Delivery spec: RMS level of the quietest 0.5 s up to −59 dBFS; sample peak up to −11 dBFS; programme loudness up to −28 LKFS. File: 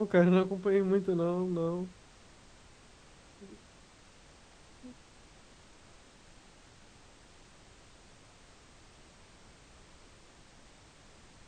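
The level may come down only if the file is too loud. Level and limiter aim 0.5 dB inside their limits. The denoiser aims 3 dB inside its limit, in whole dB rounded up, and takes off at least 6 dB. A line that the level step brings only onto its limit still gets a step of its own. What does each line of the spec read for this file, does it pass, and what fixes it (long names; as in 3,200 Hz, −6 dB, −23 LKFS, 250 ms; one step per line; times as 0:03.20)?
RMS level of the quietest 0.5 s −58 dBFS: out of spec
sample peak −12.5 dBFS: in spec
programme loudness −29.5 LKFS: in spec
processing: broadband denoise 6 dB, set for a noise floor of −58 dBFS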